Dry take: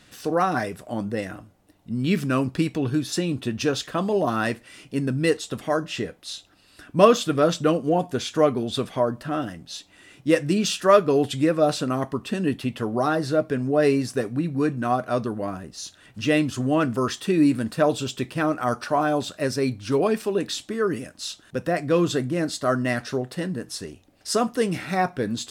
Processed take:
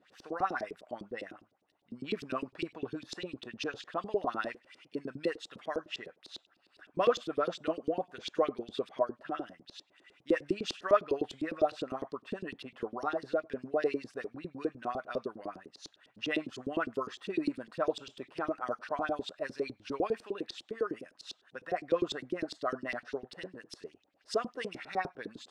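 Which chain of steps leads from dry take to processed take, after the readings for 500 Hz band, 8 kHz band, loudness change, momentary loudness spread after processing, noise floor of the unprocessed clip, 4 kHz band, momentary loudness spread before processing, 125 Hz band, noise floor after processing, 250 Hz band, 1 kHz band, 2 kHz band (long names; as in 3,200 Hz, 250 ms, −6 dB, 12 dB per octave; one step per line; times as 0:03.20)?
−11.0 dB, −20.0 dB, −12.0 dB, 14 LU, −56 dBFS, −11.5 dB, 11 LU, −23.0 dB, −72 dBFS, −15.0 dB, −10.5 dB, −10.0 dB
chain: auto-filter band-pass saw up 9.9 Hz 310–4,700 Hz
level −3.5 dB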